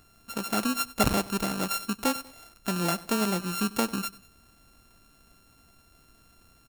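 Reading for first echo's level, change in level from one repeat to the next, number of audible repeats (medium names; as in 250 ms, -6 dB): -19.5 dB, -6.0 dB, 2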